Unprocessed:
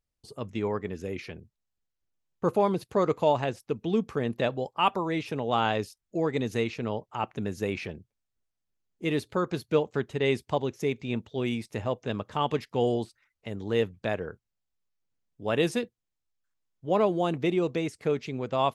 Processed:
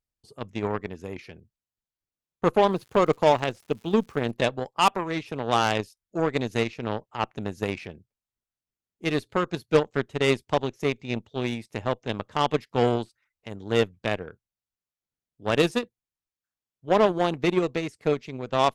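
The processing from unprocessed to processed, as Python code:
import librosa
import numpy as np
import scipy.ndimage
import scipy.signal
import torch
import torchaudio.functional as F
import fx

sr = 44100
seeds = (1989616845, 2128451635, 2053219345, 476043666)

y = fx.cheby_harmonics(x, sr, harmonics=(5, 7), levels_db=(-18, -15), full_scale_db=-10.5)
y = fx.dmg_crackle(y, sr, seeds[0], per_s=200.0, level_db=-47.0, at=(2.69, 4.3), fade=0.02)
y = y * librosa.db_to_amplitude(3.5)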